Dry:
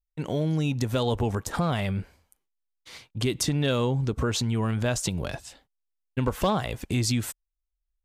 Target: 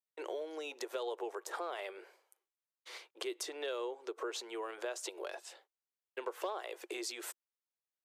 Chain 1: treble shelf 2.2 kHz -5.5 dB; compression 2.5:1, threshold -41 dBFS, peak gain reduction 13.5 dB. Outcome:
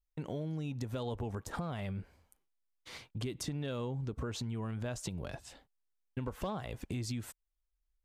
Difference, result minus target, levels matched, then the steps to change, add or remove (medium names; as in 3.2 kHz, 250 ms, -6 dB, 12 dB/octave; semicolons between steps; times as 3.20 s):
250 Hz band +7.0 dB
add first: Chebyshev high-pass 350 Hz, order 6